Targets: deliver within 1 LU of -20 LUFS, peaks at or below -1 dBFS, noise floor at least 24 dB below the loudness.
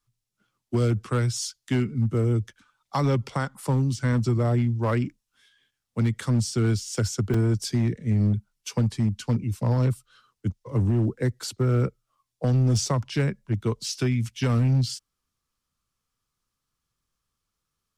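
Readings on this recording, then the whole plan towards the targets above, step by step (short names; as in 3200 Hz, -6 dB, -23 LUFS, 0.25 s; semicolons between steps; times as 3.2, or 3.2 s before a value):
clipped 1.6%; flat tops at -16.5 dBFS; dropouts 1; longest dropout 4.2 ms; loudness -25.5 LUFS; peak -16.5 dBFS; loudness target -20.0 LUFS
-> clip repair -16.5 dBFS; interpolate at 7.34, 4.2 ms; gain +5.5 dB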